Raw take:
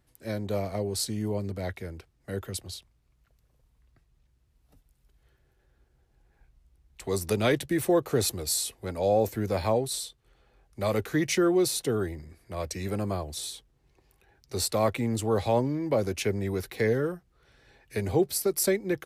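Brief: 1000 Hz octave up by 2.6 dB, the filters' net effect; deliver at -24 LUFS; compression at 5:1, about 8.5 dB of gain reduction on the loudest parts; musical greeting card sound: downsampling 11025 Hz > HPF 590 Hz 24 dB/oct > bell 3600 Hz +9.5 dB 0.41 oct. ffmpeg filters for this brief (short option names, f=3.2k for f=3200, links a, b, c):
-af "equalizer=f=1k:t=o:g=4,acompressor=threshold=-28dB:ratio=5,aresample=11025,aresample=44100,highpass=f=590:w=0.5412,highpass=f=590:w=1.3066,equalizer=f=3.6k:t=o:w=0.41:g=9.5,volume=13dB"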